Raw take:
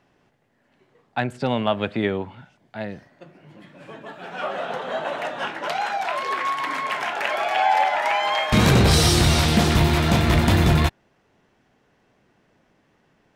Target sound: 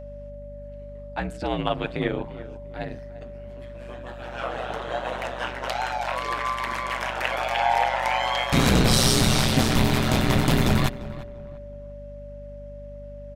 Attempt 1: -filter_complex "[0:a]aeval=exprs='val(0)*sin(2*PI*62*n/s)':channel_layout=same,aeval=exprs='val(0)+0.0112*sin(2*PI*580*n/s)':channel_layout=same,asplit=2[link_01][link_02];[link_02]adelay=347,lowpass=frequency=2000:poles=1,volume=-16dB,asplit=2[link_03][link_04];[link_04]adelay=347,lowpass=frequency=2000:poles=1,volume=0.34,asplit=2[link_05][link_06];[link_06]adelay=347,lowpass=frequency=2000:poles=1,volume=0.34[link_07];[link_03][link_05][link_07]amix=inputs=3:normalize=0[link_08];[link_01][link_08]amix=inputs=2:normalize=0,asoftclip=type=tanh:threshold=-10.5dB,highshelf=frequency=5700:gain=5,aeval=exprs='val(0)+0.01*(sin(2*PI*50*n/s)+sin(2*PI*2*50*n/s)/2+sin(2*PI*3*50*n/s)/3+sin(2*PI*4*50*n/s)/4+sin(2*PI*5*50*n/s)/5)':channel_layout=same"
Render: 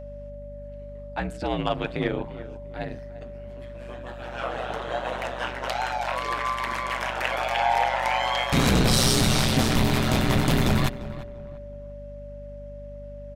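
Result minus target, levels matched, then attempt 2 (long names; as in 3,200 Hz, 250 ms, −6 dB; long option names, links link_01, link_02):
soft clipping: distortion +17 dB
-filter_complex "[0:a]aeval=exprs='val(0)*sin(2*PI*62*n/s)':channel_layout=same,aeval=exprs='val(0)+0.0112*sin(2*PI*580*n/s)':channel_layout=same,asplit=2[link_01][link_02];[link_02]adelay=347,lowpass=frequency=2000:poles=1,volume=-16dB,asplit=2[link_03][link_04];[link_04]adelay=347,lowpass=frequency=2000:poles=1,volume=0.34,asplit=2[link_05][link_06];[link_06]adelay=347,lowpass=frequency=2000:poles=1,volume=0.34[link_07];[link_03][link_05][link_07]amix=inputs=3:normalize=0[link_08];[link_01][link_08]amix=inputs=2:normalize=0,asoftclip=type=tanh:threshold=-0.5dB,highshelf=frequency=5700:gain=5,aeval=exprs='val(0)+0.01*(sin(2*PI*50*n/s)+sin(2*PI*2*50*n/s)/2+sin(2*PI*3*50*n/s)/3+sin(2*PI*4*50*n/s)/4+sin(2*PI*5*50*n/s)/5)':channel_layout=same"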